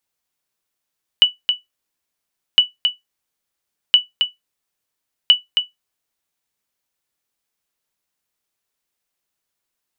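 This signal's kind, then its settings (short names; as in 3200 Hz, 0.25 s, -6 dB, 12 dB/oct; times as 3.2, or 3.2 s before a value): sonar ping 2960 Hz, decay 0.16 s, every 1.36 s, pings 4, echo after 0.27 s, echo -6.5 dB -1.5 dBFS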